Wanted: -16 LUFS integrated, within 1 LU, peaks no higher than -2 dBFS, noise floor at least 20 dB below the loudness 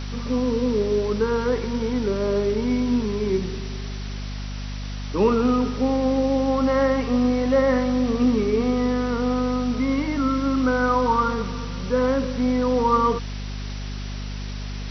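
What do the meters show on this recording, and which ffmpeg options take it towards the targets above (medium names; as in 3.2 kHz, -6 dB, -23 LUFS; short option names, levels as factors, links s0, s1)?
hum 50 Hz; highest harmonic 250 Hz; hum level -28 dBFS; noise floor -31 dBFS; noise floor target -43 dBFS; loudness -22.5 LUFS; peak level -7.0 dBFS; loudness target -16.0 LUFS
-> -af "bandreject=f=50:t=h:w=4,bandreject=f=100:t=h:w=4,bandreject=f=150:t=h:w=4,bandreject=f=200:t=h:w=4,bandreject=f=250:t=h:w=4"
-af "afftdn=nr=12:nf=-31"
-af "volume=2.11,alimiter=limit=0.794:level=0:latency=1"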